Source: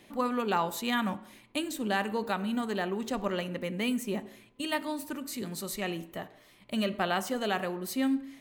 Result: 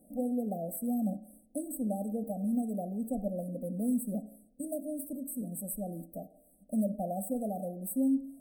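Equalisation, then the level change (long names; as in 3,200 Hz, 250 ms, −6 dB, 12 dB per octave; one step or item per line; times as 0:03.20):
linear-phase brick-wall band-stop 810–7,900 Hz
parametric band 480 Hz −4.5 dB 1.3 octaves
phaser with its sweep stopped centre 570 Hz, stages 8
+2.5 dB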